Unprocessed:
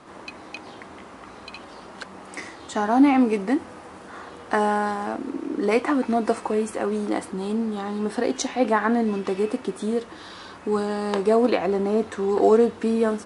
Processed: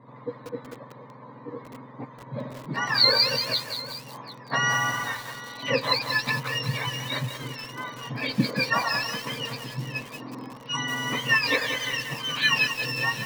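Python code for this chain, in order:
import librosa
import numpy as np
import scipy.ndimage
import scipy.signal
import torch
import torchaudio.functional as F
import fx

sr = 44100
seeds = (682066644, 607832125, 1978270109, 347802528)

p1 = fx.octave_mirror(x, sr, pivot_hz=1100.0)
p2 = fx.env_lowpass(p1, sr, base_hz=920.0, full_db=-19.0)
p3 = fx.ripple_eq(p2, sr, per_octave=1.0, db=11)
p4 = p3 + fx.echo_feedback(p3, sr, ms=749, feedback_pct=27, wet_db=-17.5, dry=0)
y = fx.echo_crushed(p4, sr, ms=184, feedback_pct=55, bits=6, wet_db=-6.5)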